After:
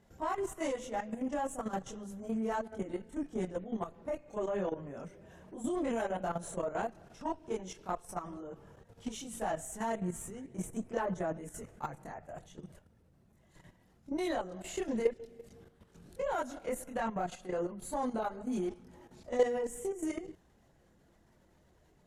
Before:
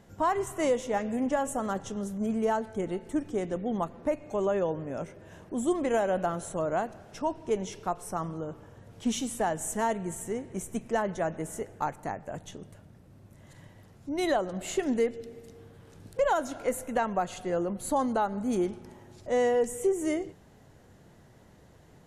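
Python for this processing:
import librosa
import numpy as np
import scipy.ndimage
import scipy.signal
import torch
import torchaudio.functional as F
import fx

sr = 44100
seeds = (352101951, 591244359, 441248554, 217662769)

y = fx.chorus_voices(x, sr, voices=6, hz=0.76, base_ms=25, depth_ms=3.2, mix_pct=60)
y = fx.level_steps(y, sr, step_db=11)
y = fx.cheby_harmonics(y, sr, harmonics=(8,), levels_db=(-31,), full_scale_db=-16.5)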